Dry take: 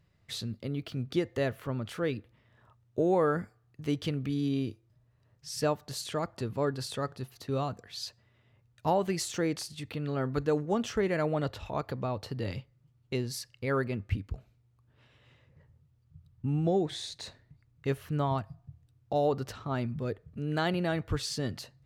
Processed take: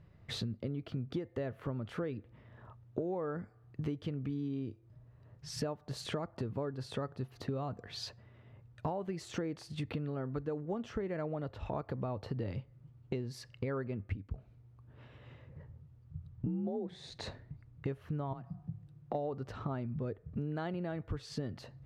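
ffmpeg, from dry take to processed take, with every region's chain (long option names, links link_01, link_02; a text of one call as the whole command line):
ffmpeg -i in.wav -filter_complex "[0:a]asettb=1/sr,asplit=3[link_01][link_02][link_03];[link_01]atrim=end=16.464[link_04];[link_02]atrim=start=16.46:end=17.1,asetpts=PTS-STARTPTS,afade=type=in:duration=0.004:curve=qsin,afade=type=out:start_time=0.636:duration=0.004:curve=qsin,lowshelf=frequency=380:gain=7.5,afreqshift=39[link_05];[link_03]atrim=start=17.096[link_06];[link_04][link_05]acrossfade=duration=0.004:curve1=hsin:curve2=qsin[link_07];[link_07][link_06]acrossfade=duration=0.004:curve1=qsin:curve2=hsin,asettb=1/sr,asplit=3[link_08][link_09][link_10];[link_08]atrim=end=18.334[link_11];[link_09]atrim=start=18.33:end=19.15,asetpts=PTS-STARTPTS,afade=type=in:duration=0.004:curve=qsin,afade=type=out:start_time=0.816:duration=0.004:curve=qsin,acompressor=threshold=-39dB:ratio=4:attack=3.2:release=140:knee=1:detection=peak,afreqshift=24[link_12];[link_10]atrim=start=19.146[link_13];[link_11][link_12]acrossfade=duration=0.004:curve1=hsin:curve2=qsin[link_14];[link_14][link_13]acrossfade=duration=0.004:curve1=qsin:curve2=hsin,lowpass=frequency=1100:poles=1,acompressor=threshold=-43dB:ratio=12,volume=9dB" out.wav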